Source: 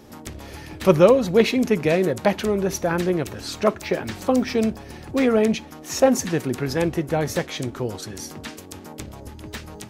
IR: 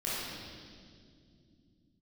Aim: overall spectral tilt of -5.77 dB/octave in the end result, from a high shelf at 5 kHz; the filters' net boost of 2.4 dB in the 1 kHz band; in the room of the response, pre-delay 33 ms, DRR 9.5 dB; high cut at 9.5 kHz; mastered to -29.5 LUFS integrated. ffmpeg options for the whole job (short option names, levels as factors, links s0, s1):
-filter_complex "[0:a]lowpass=9500,equalizer=f=1000:t=o:g=3.5,highshelf=f=5000:g=-6,asplit=2[s0][s1];[1:a]atrim=start_sample=2205,adelay=33[s2];[s1][s2]afir=irnorm=-1:irlink=0,volume=0.158[s3];[s0][s3]amix=inputs=2:normalize=0,volume=0.355"